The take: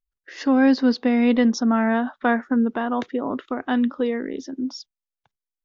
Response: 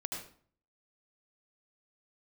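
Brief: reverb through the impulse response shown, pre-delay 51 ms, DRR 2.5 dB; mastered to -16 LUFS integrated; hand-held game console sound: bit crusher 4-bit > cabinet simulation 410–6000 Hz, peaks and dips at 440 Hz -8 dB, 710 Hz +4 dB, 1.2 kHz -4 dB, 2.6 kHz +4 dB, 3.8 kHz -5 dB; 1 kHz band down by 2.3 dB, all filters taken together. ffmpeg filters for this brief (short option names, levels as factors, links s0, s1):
-filter_complex "[0:a]equalizer=f=1000:t=o:g=-5.5,asplit=2[s0][s1];[1:a]atrim=start_sample=2205,adelay=51[s2];[s1][s2]afir=irnorm=-1:irlink=0,volume=0.668[s3];[s0][s3]amix=inputs=2:normalize=0,acrusher=bits=3:mix=0:aa=0.000001,highpass=410,equalizer=f=440:t=q:w=4:g=-8,equalizer=f=710:t=q:w=4:g=4,equalizer=f=1200:t=q:w=4:g=-4,equalizer=f=2600:t=q:w=4:g=4,equalizer=f=3800:t=q:w=4:g=-5,lowpass=f=6000:w=0.5412,lowpass=f=6000:w=1.3066,volume=2.66"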